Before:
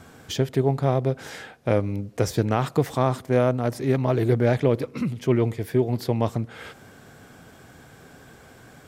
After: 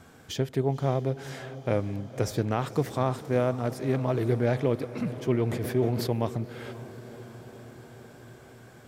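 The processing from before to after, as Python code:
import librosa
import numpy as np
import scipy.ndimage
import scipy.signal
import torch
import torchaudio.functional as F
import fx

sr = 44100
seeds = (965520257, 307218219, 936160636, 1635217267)

y = fx.echo_diffused(x, sr, ms=535, feedback_pct=67, wet_db=-15)
y = fx.sustainer(y, sr, db_per_s=45.0, at=(5.45, 6.13))
y = F.gain(torch.from_numpy(y), -5.0).numpy()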